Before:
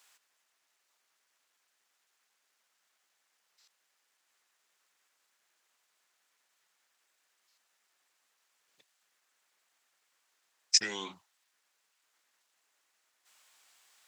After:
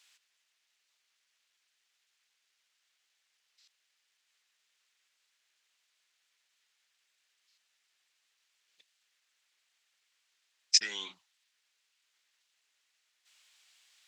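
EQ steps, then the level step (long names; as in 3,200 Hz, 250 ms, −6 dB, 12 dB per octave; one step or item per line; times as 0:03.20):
meter weighting curve D
−8.5 dB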